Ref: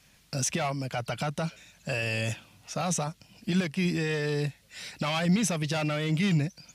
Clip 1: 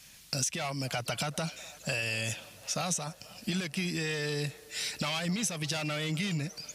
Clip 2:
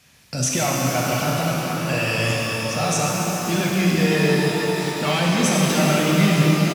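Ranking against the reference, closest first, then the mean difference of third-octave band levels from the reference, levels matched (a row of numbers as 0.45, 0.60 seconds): 1, 2; 6.0, 11.0 decibels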